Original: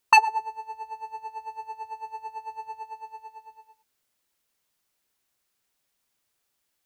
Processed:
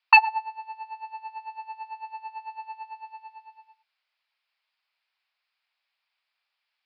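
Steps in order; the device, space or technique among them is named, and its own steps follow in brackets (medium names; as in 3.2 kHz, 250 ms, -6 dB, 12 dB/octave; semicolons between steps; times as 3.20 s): musical greeting card (resampled via 11.025 kHz; high-pass 740 Hz 24 dB/octave; peaking EQ 2.4 kHz +6.5 dB 0.41 oct)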